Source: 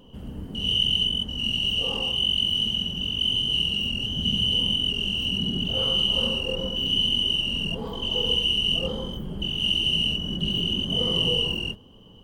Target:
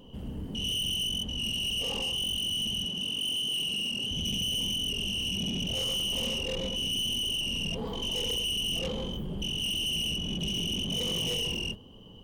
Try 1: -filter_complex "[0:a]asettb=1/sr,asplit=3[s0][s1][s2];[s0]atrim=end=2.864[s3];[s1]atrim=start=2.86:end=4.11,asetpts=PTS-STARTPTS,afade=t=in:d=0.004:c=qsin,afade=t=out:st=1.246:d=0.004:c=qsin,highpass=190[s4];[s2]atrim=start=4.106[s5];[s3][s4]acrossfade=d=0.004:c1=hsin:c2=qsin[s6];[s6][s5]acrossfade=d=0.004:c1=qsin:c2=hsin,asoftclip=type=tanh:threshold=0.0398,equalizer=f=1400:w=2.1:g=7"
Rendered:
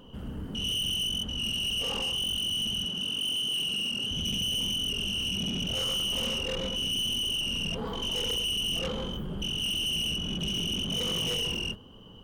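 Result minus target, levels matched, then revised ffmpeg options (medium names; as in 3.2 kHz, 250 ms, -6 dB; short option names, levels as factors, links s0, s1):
1 kHz band +2.5 dB
-filter_complex "[0:a]asettb=1/sr,asplit=3[s0][s1][s2];[s0]atrim=end=2.864[s3];[s1]atrim=start=2.86:end=4.11,asetpts=PTS-STARTPTS,afade=t=in:d=0.004:c=qsin,afade=t=out:st=1.246:d=0.004:c=qsin,highpass=190[s4];[s2]atrim=start=4.106[s5];[s3][s4]acrossfade=d=0.004:c1=hsin:c2=qsin[s6];[s6][s5]acrossfade=d=0.004:c1=qsin:c2=hsin,asoftclip=type=tanh:threshold=0.0398,equalizer=f=1400:w=2.1:g=-4"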